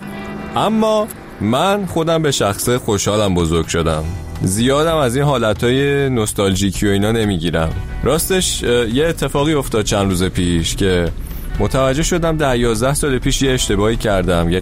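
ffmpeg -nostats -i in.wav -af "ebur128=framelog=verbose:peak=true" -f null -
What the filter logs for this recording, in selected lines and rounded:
Integrated loudness:
  I:         -16.1 LUFS
  Threshold: -26.2 LUFS
Loudness range:
  LRA:         1.1 LU
  Threshold: -36.2 LUFS
  LRA low:   -16.7 LUFS
  LRA high:  -15.6 LUFS
True peak:
  Peak:       -4.3 dBFS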